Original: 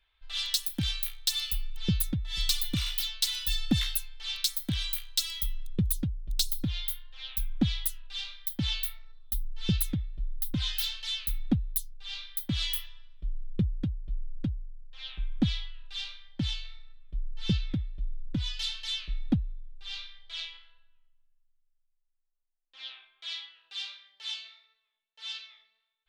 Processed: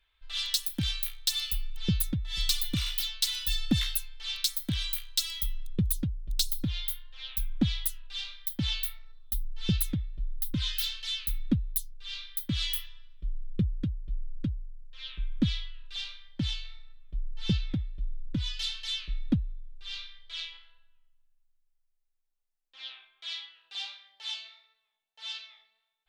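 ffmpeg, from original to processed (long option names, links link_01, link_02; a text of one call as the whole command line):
ffmpeg -i in.wav -af "asetnsamples=nb_out_samples=441:pad=0,asendcmd='10.25 equalizer g -15;15.96 equalizer g -5;16.67 equalizer g 1.5;17.83 equalizer g -8.5;20.52 equalizer g 0.5;23.75 equalizer g 12',equalizer=frequency=770:width_type=o:width=0.33:gain=-3.5" out.wav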